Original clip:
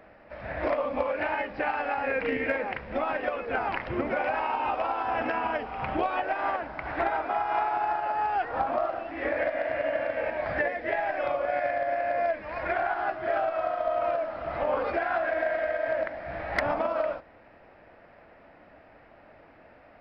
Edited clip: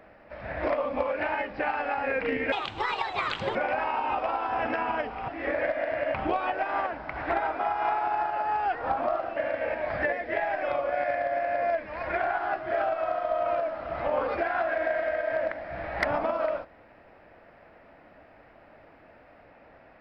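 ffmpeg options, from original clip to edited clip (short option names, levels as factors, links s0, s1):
-filter_complex "[0:a]asplit=6[s0][s1][s2][s3][s4][s5];[s0]atrim=end=2.524[s6];[s1]atrim=start=2.52:end=4.11,asetpts=PTS-STARTPTS,asetrate=67914,aresample=44100[s7];[s2]atrim=start=4.106:end=5.842[s8];[s3]atrim=start=9.058:end=9.922[s9];[s4]atrim=start=5.838:end=9.062[s10];[s5]atrim=start=9.918[s11];[s6][s7]acrossfade=d=0.004:c1=hsin:c2=hsin[s12];[s12][s8]acrossfade=d=0.004:c1=hsin:c2=hsin[s13];[s13][s9]acrossfade=d=0.004:c1=hsin:c2=hsin[s14];[s14][s10]acrossfade=d=0.004:c1=hsin:c2=hsin[s15];[s15][s11]acrossfade=d=0.004:c1=hsin:c2=hsin"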